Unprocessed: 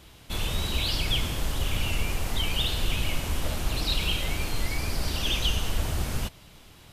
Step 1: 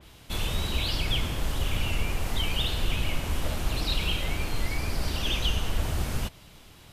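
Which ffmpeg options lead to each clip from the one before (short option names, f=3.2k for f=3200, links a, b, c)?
-af "adynamicequalizer=threshold=0.01:dfrequency=3300:dqfactor=0.7:tfrequency=3300:tqfactor=0.7:attack=5:release=100:ratio=0.375:range=2.5:mode=cutabove:tftype=highshelf"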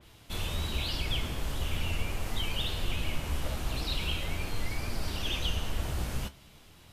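-af "flanger=delay=8.3:depth=8:regen=62:speed=0.41:shape=triangular"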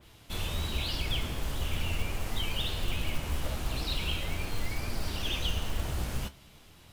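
-af "acrusher=bits=6:mode=log:mix=0:aa=0.000001"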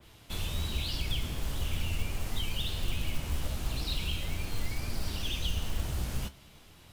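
-filter_complex "[0:a]acrossover=split=270|3000[a][b][c];[b]acompressor=threshold=-44dB:ratio=6[d];[a][d][c]amix=inputs=3:normalize=0"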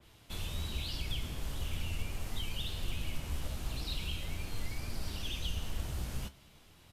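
-af "aresample=32000,aresample=44100,volume=-4.5dB"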